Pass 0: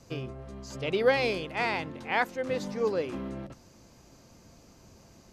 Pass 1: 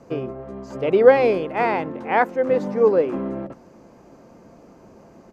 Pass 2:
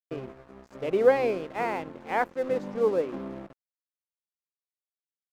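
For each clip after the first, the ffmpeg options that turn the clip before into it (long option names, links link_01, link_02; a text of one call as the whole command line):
ffmpeg -i in.wav -af "firequalizer=gain_entry='entry(100,0);entry(180,10);entry(440,14);entry(3700,-5)':delay=0.05:min_phase=1,volume=-1.5dB" out.wav
ffmpeg -i in.wav -af "agate=range=-33dB:threshold=-35dB:ratio=3:detection=peak,aeval=exprs='sgn(val(0))*max(abs(val(0))-0.015,0)':channel_layout=same,volume=-7.5dB" out.wav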